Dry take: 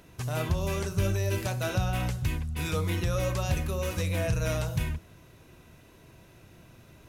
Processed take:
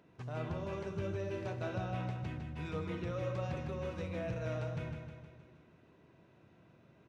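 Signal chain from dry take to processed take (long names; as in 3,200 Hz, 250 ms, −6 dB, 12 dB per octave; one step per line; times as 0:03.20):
high-pass filter 140 Hz 12 dB per octave
head-to-tape spacing loss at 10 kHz 28 dB
on a send: repeating echo 156 ms, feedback 57%, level −7 dB
on the sum: level −6.5 dB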